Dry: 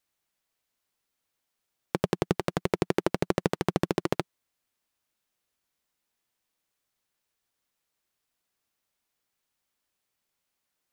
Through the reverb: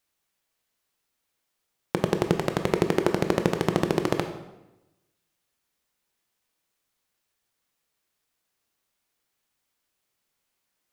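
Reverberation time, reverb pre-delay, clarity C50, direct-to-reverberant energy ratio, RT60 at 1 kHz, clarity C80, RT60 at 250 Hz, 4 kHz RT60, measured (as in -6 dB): 0.95 s, 16 ms, 8.5 dB, 6.0 dB, 0.90 s, 10.5 dB, 1.1 s, 0.80 s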